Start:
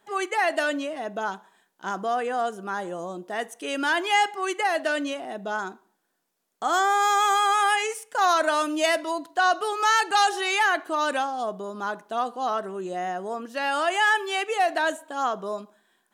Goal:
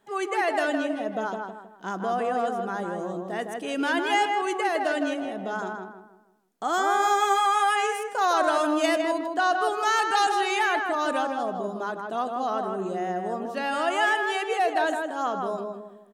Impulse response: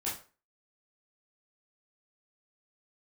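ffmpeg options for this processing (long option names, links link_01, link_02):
-filter_complex "[0:a]lowshelf=frequency=470:gain=7.5,asplit=2[link_01][link_02];[link_02]adelay=159,lowpass=frequency=1900:poles=1,volume=-3dB,asplit=2[link_03][link_04];[link_04]adelay=159,lowpass=frequency=1900:poles=1,volume=0.39,asplit=2[link_05][link_06];[link_06]adelay=159,lowpass=frequency=1900:poles=1,volume=0.39,asplit=2[link_07][link_08];[link_08]adelay=159,lowpass=frequency=1900:poles=1,volume=0.39,asplit=2[link_09][link_10];[link_10]adelay=159,lowpass=frequency=1900:poles=1,volume=0.39[link_11];[link_01][link_03][link_05][link_07][link_09][link_11]amix=inputs=6:normalize=0,volume=-4dB"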